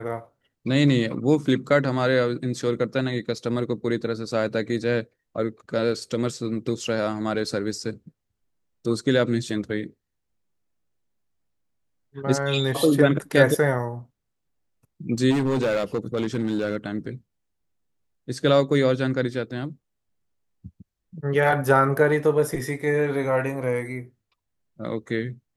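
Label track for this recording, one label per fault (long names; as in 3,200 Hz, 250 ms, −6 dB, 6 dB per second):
15.300000	16.770000	clipping −19 dBFS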